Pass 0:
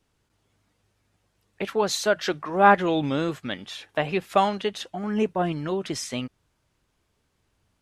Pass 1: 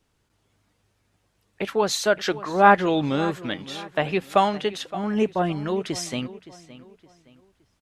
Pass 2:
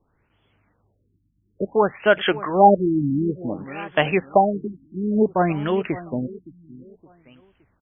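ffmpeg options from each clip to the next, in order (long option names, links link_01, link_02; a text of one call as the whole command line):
ffmpeg -i in.wav -filter_complex "[0:a]asplit=2[link_01][link_02];[link_02]adelay=567,lowpass=frequency=4900:poles=1,volume=-16.5dB,asplit=2[link_03][link_04];[link_04]adelay=567,lowpass=frequency=4900:poles=1,volume=0.35,asplit=2[link_05][link_06];[link_06]adelay=567,lowpass=frequency=4900:poles=1,volume=0.35[link_07];[link_01][link_03][link_05][link_07]amix=inputs=4:normalize=0,volume=1.5dB" out.wav
ffmpeg -i in.wav -af "aemphasis=mode=production:type=75fm,afftfilt=real='re*lt(b*sr/1024,330*pow(3500/330,0.5+0.5*sin(2*PI*0.57*pts/sr)))':imag='im*lt(b*sr/1024,330*pow(3500/330,0.5+0.5*sin(2*PI*0.57*pts/sr)))':win_size=1024:overlap=0.75,volume=4.5dB" out.wav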